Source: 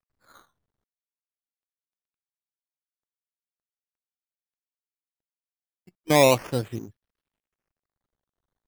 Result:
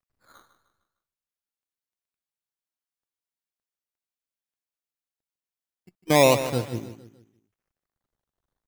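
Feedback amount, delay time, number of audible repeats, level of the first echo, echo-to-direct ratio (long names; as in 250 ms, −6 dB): 42%, 152 ms, 4, −12.0 dB, −11.0 dB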